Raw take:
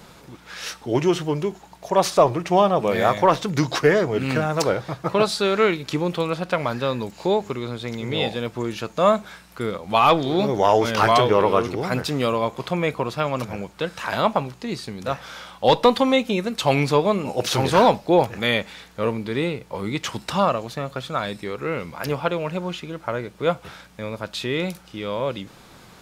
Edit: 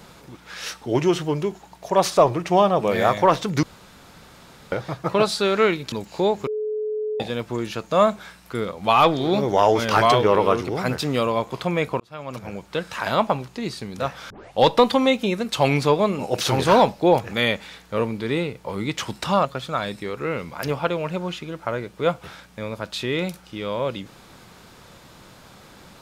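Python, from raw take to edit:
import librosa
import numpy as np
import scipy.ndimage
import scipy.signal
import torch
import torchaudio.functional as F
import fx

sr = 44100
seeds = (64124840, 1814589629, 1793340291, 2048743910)

y = fx.edit(x, sr, fx.room_tone_fill(start_s=3.63, length_s=1.09),
    fx.cut(start_s=5.92, length_s=1.06),
    fx.bleep(start_s=7.53, length_s=0.73, hz=428.0, db=-23.0),
    fx.fade_in_span(start_s=13.06, length_s=0.71),
    fx.tape_start(start_s=15.36, length_s=0.28),
    fx.cut(start_s=20.51, length_s=0.35), tone=tone)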